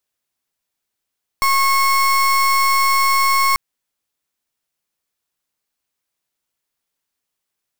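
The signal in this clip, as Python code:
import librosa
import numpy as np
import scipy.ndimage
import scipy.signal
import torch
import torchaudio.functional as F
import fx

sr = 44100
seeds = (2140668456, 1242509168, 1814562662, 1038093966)

y = fx.pulse(sr, length_s=2.14, hz=1090.0, level_db=-15.0, duty_pct=32)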